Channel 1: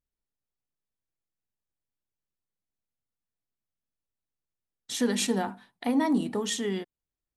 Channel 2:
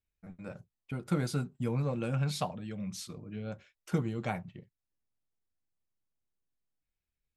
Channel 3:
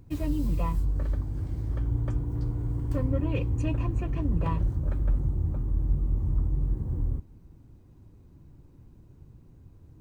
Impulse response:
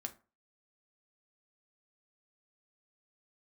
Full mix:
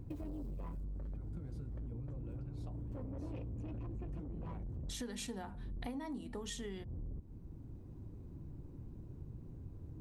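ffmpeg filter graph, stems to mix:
-filter_complex "[0:a]volume=-3.5dB,asplit=2[link_01][link_02];[1:a]adelay=250,volume=-9.5dB[link_03];[2:a]asoftclip=type=tanh:threshold=-29dB,lowshelf=frequency=260:gain=-8,volume=2.5dB[link_04];[link_02]apad=whole_len=441153[link_05];[link_04][link_05]sidechaincompress=threshold=-37dB:ratio=8:attack=16:release=1440[link_06];[link_03][link_06]amix=inputs=2:normalize=0,tiltshelf=frequency=690:gain=8,acompressor=threshold=-36dB:ratio=6,volume=0dB[link_07];[link_01][link_07]amix=inputs=2:normalize=0,acompressor=threshold=-41dB:ratio=6"

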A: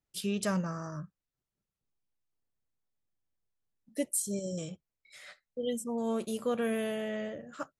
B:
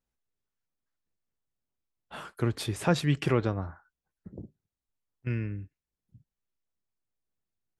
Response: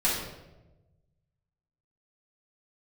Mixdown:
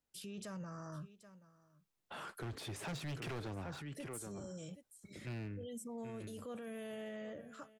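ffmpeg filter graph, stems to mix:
-filter_complex "[0:a]volume=-6dB,asplit=3[link_01][link_02][link_03];[link_02]volume=-24dB[link_04];[1:a]deesser=0.95,highpass=frequency=150:poles=1,dynaudnorm=framelen=560:gausssize=5:maxgain=7.5dB,volume=-2dB,asplit=2[link_05][link_06];[link_06]volume=-14dB[link_07];[link_03]apad=whole_len=343662[link_08];[link_05][link_08]sidechaincompress=threshold=-42dB:ratio=8:attack=16:release=145[link_09];[link_04][link_07]amix=inputs=2:normalize=0,aecho=0:1:778:1[link_10];[link_01][link_09][link_10]amix=inputs=3:normalize=0,acrossover=split=210|3000[link_11][link_12][link_13];[link_12]acompressor=threshold=-28dB:ratio=1.5[link_14];[link_11][link_14][link_13]amix=inputs=3:normalize=0,volume=28.5dB,asoftclip=hard,volume=-28.5dB,alimiter=level_in=15.5dB:limit=-24dB:level=0:latency=1:release=15,volume=-15.5dB"

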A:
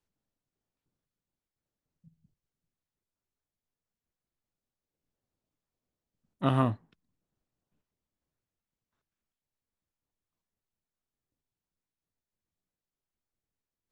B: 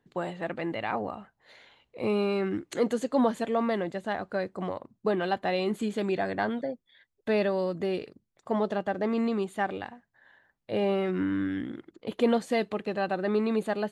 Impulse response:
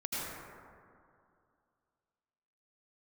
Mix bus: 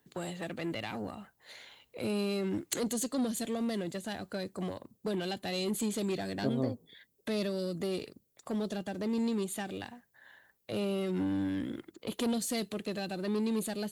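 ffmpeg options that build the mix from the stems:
-filter_complex "[0:a]lowpass=frequency=460:width_type=q:width=4.3,volume=0.5dB[link_01];[1:a]acrossover=split=370|3000[link_02][link_03][link_04];[link_03]acompressor=threshold=-41dB:ratio=5[link_05];[link_02][link_05][link_04]amix=inputs=3:normalize=0,aeval=exprs='(tanh(22.4*val(0)+0.35)-tanh(0.35))/22.4':channel_layout=same,volume=1.5dB,asplit=2[link_06][link_07];[link_07]apad=whole_len=613740[link_08];[link_01][link_08]sidechaincompress=threshold=-41dB:ratio=8:attack=16:release=213[link_09];[link_09][link_06]amix=inputs=2:normalize=0,highpass=43,aemphasis=mode=production:type=75fm"

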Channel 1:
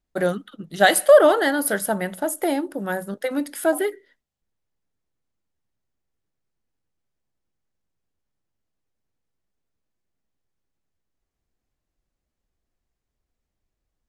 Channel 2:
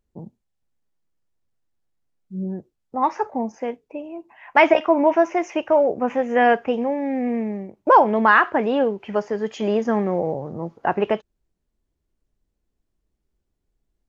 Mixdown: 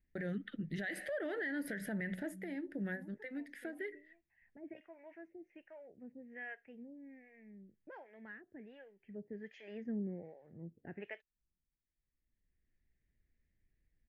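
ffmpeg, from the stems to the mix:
ffmpeg -i stem1.wav -i stem2.wav -filter_complex "[0:a]acompressor=threshold=-24dB:ratio=6,volume=2dB[link_01];[1:a]acrossover=split=540[link_02][link_03];[link_02]aeval=exprs='val(0)*(1-1/2+1/2*cos(2*PI*1.3*n/s))':channel_layout=same[link_04];[link_03]aeval=exprs='val(0)*(1-1/2-1/2*cos(2*PI*1.3*n/s))':channel_layout=same[link_05];[link_04][link_05]amix=inputs=2:normalize=0,volume=-12.5dB,afade=type=in:start_time=8.99:duration=0.3:silence=0.375837,asplit=2[link_06][link_07];[link_07]apad=whole_len=621248[link_08];[link_01][link_08]sidechaincompress=threshold=-58dB:ratio=12:attack=8.4:release=983[link_09];[link_09][link_06]amix=inputs=2:normalize=0,firequalizer=gain_entry='entry(160,0);entry(1100,-25);entry(1800,5);entry(3000,-11);entry(7900,-24)':delay=0.05:min_phase=1,alimiter=level_in=8dB:limit=-24dB:level=0:latency=1:release=90,volume=-8dB" out.wav

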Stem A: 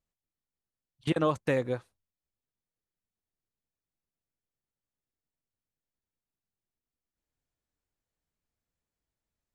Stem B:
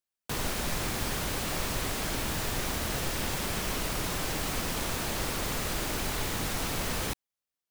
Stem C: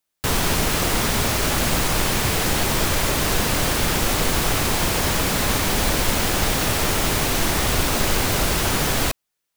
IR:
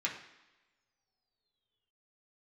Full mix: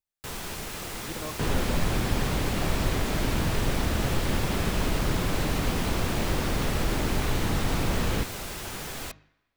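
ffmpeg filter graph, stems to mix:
-filter_complex "[0:a]volume=-12dB[link_01];[1:a]lowpass=4400,lowshelf=frequency=490:gain=8.5,adelay=1100,volume=0.5dB[link_02];[2:a]bandreject=frequency=50.92:width_type=h:width=4,bandreject=frequency=101.84:width_type=h:width=4,bandreject=frequency=152.76:width_type=h:width=4,bandreject=frequency=203.68:width_type=h:width=4,bandreject=frequency=254.6:width_type=h:width=4,bandreject=frequency=305.52:width_type=h:width=4,volume=-16dB,asplit=2[link_03][link_04];[link_04]volume=-15dB[link_05];[3:a]atrim=start_sample=2205[link_06];[link_05][link_06]afir=irnorm=-1:irlink=0[link_07];[link_01][link_02][link_03][link_07]amix=inputs=4:normalize=0"

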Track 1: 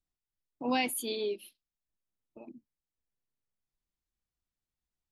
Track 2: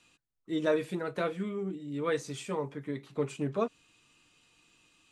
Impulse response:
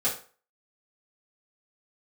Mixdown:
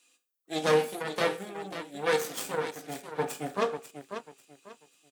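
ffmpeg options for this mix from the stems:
-filter_complex "[0:a]volume=-14.5dB[link_01];[1:a]highpass=frequency=240:width=0.5412,highpass=frequency=240:width=1.3066,aemphasis=mode=production:type=75fm,aeval=exprs='0.158*(cos(1*acos(clip(val(0)/0.158,-1,1)))-cos(1*PI/2))+0.0447*(cos(6*acos(clip(val(0)/0.158,-1,1)))-cos(6*PI/2))+0.0126*(cos(7*acos(clip(val(0)/0.158,-1,1)))-cos(7*PI/2))':channel_layout=same,volume=-2.5dB,asplit=3[link_02][link_03][link_04];[link_03]volume=-10.5dB[link_05];[link_04]volume=-7dB[link_06];[2:a]atrim=start_sample=2205[link_07];[link_05][link_07]afir=irnorm=-1:irlink=0[link_08];[link_06]aecho=0:1:543|1086|1629|2172:1|0.28|0.0784|0.022[link_09];[link_01][link_02][link_08][link_09]amix=inputs=4:normalize=0,highpass=180,equalizer=frequency=360:width_type=o:width=0.69:gain=2.5"

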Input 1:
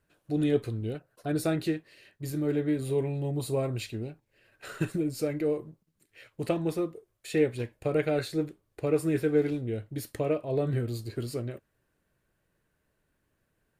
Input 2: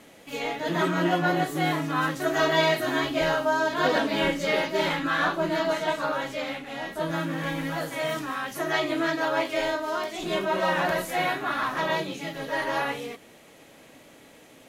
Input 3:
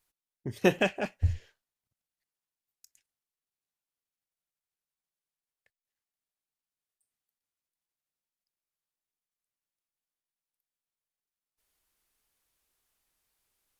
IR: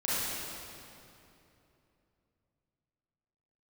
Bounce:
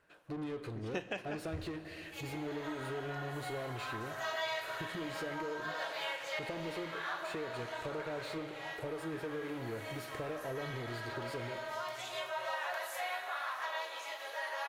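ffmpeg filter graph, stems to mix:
-filter_complex "[0:a]lowshelf=frequency=150:gain=6,acompressor=threshold=-27dB:ratio=6,asplit=2[link_01][link_02];[link_02]highpass=frequency=720:poles=1,volume=18dB,asoftclip=type=tanh:threshold=-32dB[link_03];[link_01][link_03]amix=inputs=2:normalize=0,lowpass=frequency=1400:poles=1,volume=-6dB,volume=0dB,asplit=3[link_04][link_05][link_06];[link_05]volume=-20dB[link_07];[1:a]highpass=frequency=570:width=0.5412,highpass=frequency=570:width=1.3066,adelay=1850,volume=-7dB,asplit=2[link_08][link_09];[link_09]volume=-16dB[link_10];[2:a]lowpass=6200,adelay=300,volume=-6dB,asplit=2[link_11][link_12];[link_12]volume=-23.5dB[link_13];[link_06]apad=whole_len=729038[link_14];[link_08][link_14]sidechaincompress=threshold=-49dB:ratio=8:attack=5.6:release=203[link_15];[3:a]atrim=start_sample=2205[link_16];[link_07][link_10][link_13]amix=inputs=3:normalize=0[link_17];[link_17][link_16]afir=irnorm=-1:irlink=0[link_18];[link_04][link_15][link_11][link_18]amix=inputs=4:normalize=0,lowshelf=frequency=390:gain=-8,acompressor=threshold=-39dB:ratio=2"

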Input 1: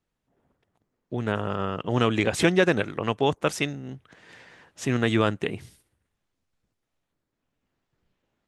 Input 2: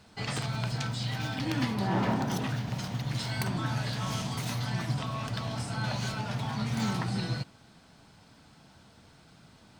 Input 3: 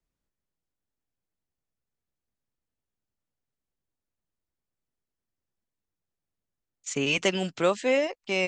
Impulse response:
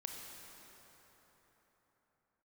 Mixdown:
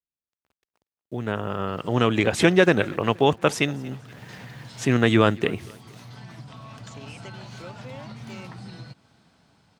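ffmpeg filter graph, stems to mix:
-filter_complex "[0:a]acrusher=bits=9:mix=0:aa=0.000001,volume=-2dB,asplit=3[link_01][link_02][link_03];[link_02]volume=-23.5dB[link_04];[1:a]acompressor=threshold=-35dB:ratio=5,adelay=1500,volume=-10dB[link_05];[2:a]acompressor=threshold=-39dB:ratio=2,volume=-17dB[link_06];[link_03]apad=whole_len=498308[link_07];[link_05][link_07]sidechaincompress=threshold=-30dB:ratio=8:attack=9.4:release=865[link_08];[link_04]aecho=0:1:236|472|708|944|1180|1416:1|0.42|0.176|0.0741|0.0311|0.0131[link_09];[link_01][link_08][link_06][link_09]amix=inputs=4:normalize=0,highpass=53,highshelf=frequency=6700:gain=-4,dynaudnorm=framelen=300:gausssize=13:maxgain=8.5dB"

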